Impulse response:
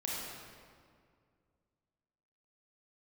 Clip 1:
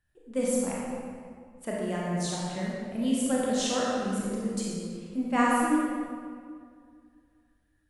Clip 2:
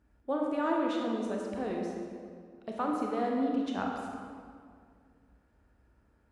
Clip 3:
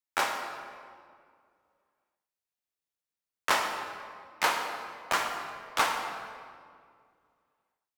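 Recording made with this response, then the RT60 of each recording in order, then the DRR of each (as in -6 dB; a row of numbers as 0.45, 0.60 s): 1; 2.1, 2.1, 2.1 s; -5.0, -1.0, 3.0 dB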